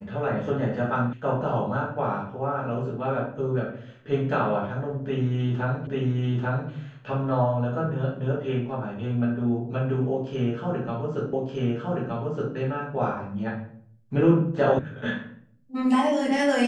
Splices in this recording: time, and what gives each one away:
0:01.13: cut off before it has died away
0:05.87: the same again, the last 0.84 s
0:11.33: the same again, the last 1.22 s
0:14.79: cut off before it has died away

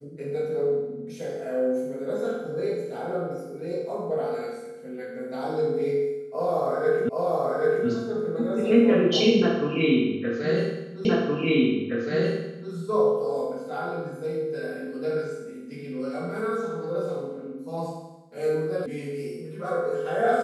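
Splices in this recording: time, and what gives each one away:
0:07.09: the same again, the last 0.78 s
0:11.05: the same again, the last 1.67 s
0:18.86: cut off before it has died away

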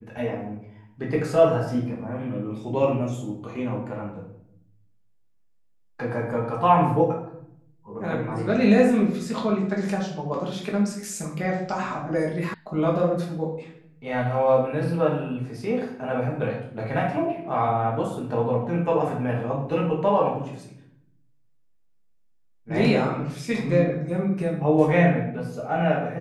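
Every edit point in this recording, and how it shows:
0:12.54: cut off before it has died away

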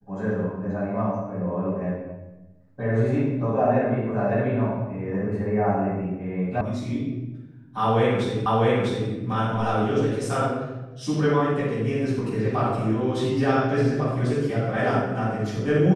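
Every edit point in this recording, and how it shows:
0:06.61: cut off before it has died away
0:08.46: the same again, the last 0.65 s

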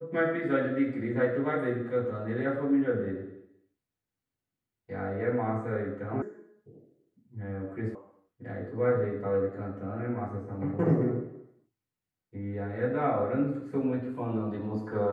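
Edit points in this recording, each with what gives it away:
0:06.22: cut off before it has died away
0:07.95: cut off before it has died away

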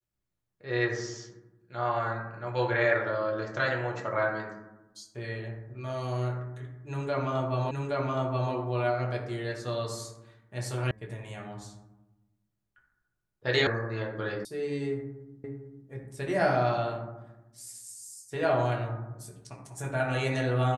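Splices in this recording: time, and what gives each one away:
0:07.71: the same again, the last 0.82 s
0:10.91: cut off before it has died away
0:13.67: cut off before it has died away
0:14.45: cut off before it has died away
0:15.44: the same again, the last 0.45 s

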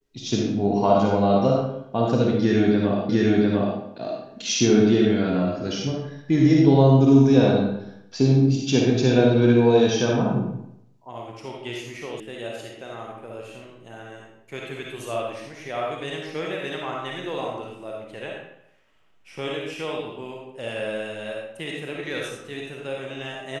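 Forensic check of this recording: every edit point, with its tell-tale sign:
0:03.09: the same again, the last 0.7 s
0:12.20: cut off before it has died away

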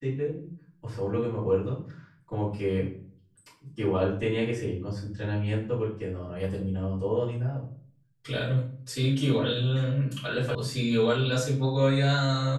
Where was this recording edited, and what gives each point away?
0:10.55: cut off before it has died away

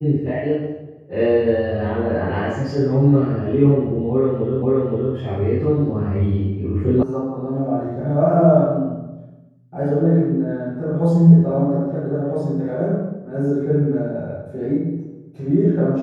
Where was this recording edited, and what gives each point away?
0:04.62: the same again, the last 0.52 s
0:07.03: cut off before it has died away

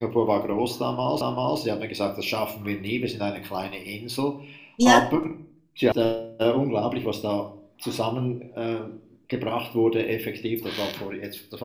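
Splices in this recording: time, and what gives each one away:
0:01.21: the same again, the last 0.39 s
0:05.92: cut off before it has died away

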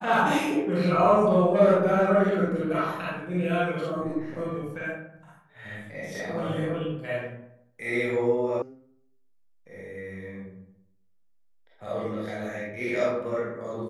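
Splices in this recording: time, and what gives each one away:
0:08.62: cut off before it has died away

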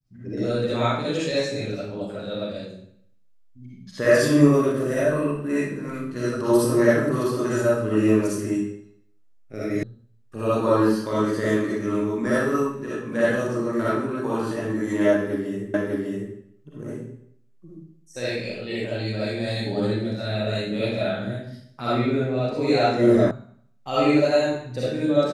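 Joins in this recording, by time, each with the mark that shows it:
0:09.83: cut off before it has died away
0:15.74: the same again, the last 0.6 s
0:23.31: cut off before it has died away

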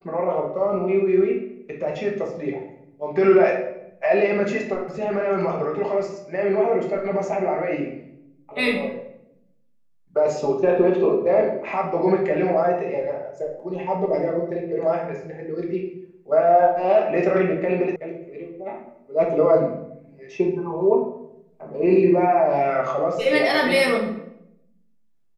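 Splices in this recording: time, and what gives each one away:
0:17.96: cut off before it has died away

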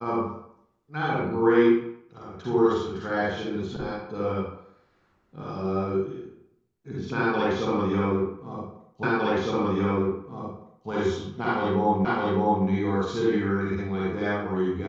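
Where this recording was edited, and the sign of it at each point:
0:09.03: the same again, the last 1.86 s
0:12.05: the same again, the last 0.61 s

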